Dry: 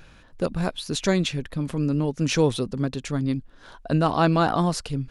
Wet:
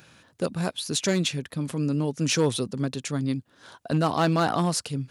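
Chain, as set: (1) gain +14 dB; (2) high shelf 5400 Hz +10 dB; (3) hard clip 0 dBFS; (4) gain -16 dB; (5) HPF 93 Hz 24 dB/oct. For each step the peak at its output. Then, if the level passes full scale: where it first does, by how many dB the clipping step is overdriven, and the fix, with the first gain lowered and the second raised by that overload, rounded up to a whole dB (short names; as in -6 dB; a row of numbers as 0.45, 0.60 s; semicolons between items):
+5.5, +6.0, 0.0, -16.0, -11.0 dBFS; step 1, 6.0 dB; step 1 +8 dB, step 4 -10 dB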